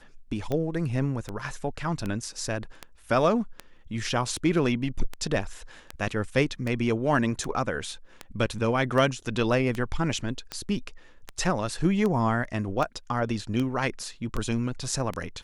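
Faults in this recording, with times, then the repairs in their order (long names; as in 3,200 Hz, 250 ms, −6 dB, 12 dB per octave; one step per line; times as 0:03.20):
scratch tick 78 rpm −17 dBFS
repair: click removal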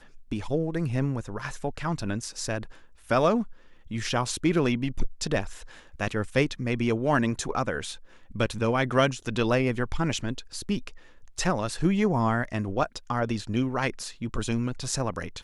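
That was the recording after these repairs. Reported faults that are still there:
none of them is left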